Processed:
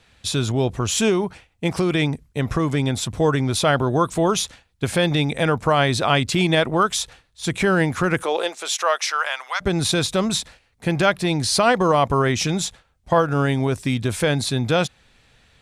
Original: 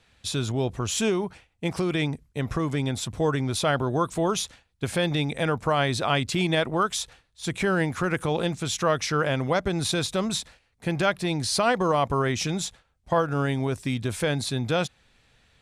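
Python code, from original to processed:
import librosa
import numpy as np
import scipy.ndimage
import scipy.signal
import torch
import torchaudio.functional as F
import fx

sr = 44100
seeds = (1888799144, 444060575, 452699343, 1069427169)

y = fx.highpass(x, sr, hz=fx.line((8.22, 340.0), (9.6, 1100.0)), slope=24, at=(8.22, 9.6), fade=0.02)
y = y * librosa.db_to_amplitude(5.5)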